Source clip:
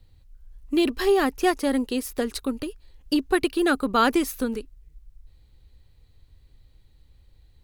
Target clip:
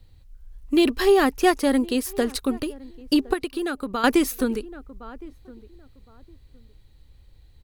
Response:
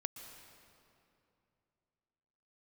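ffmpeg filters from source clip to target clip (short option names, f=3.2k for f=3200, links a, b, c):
-filter_complex "[0:a]asplit=2[a][b];[b]adelay=1063,lowpass=f=1k:p=1,volume=-21dB,asplit=2[c][d];[d]adelay=1063,lowpass=f=1k:p=1,volume=0.23[e];[a][c][e]amix=inputs=3:normalize=0,asettb=1/sr,asplit=3[f][g][h];[f]atrim=end=3.334[i];[g]atrim=start=3.33:end=4.04,asetpts=PTS-STARTPTS,afade=t=in:d=0.004:c=qsin,afade=t=out:st=0.706:d=0.004:c=qsin,acompressor=threshold=-28dB:ratio=6[j];[h]atrim=start=4.036[k];[i][j]acrossfade=d=0.004:c1=hsin:c2=qsin[l];[l][k]acrossfade=d=0.004:c1=qsin:c2=hsin,volume=3dB"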